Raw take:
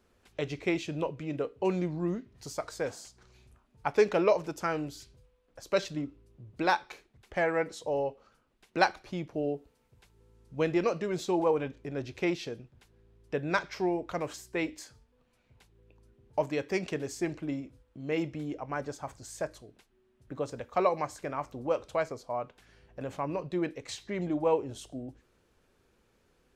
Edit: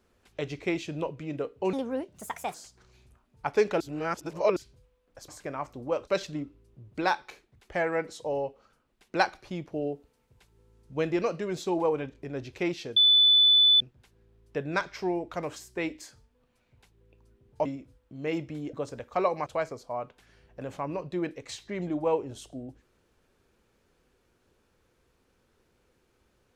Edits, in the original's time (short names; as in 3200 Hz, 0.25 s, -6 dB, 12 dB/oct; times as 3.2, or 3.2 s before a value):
1.73–2.95 speed 150%
4.21–4.97 reverse
12.58 add tone 3490 Hz -16 dBFS 0.84 s
16.43–17.5 cut
18.58–20.34 cut
21.07–21.86 move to 5.69